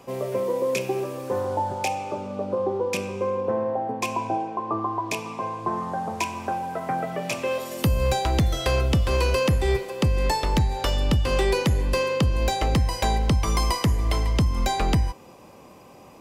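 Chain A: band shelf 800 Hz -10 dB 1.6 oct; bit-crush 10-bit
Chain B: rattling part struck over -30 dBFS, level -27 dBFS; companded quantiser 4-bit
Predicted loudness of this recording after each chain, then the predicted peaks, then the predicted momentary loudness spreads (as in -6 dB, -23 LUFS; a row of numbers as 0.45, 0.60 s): -26.5, -24.0 LUFS; -11.5, -12.0 dBFS; 11, 7 LU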